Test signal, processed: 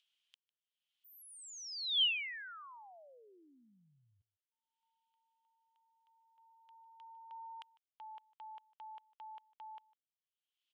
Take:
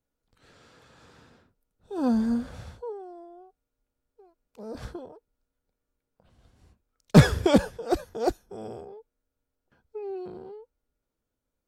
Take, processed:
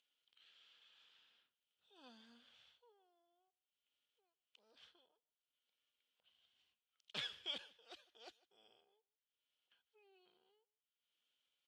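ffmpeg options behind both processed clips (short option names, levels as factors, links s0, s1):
-filter_complex "[0:a]acompressor=mode=upward:threshold=0.00708:ratio=2.5,bandpass=f=3100:t=q:w=6.7:csg=0,asplit=2[s0][s1];[s1]adelay=151.6,volume=0.0794,highshelf=f=4000:g=-3.41[s2];[s0][s2]amix=inputs=2:normalize=0,volume=0.631"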